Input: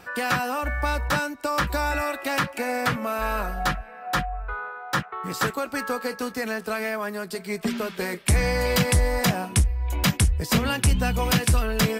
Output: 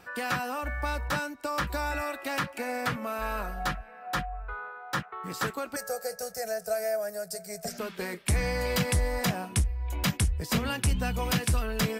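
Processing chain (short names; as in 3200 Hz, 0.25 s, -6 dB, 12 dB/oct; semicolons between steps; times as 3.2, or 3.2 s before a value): 5.76–7.79 EQ curve 170 Hz 0 dB, 310 Hz -27 dB, 440 Hz -1 dB, 690 Hz +11 dB, 980 Hz -19 dB, 1500 Hz -3 dB, 3300 Hz -15 dB, 5400 Hz +9 dB; gain -6 dB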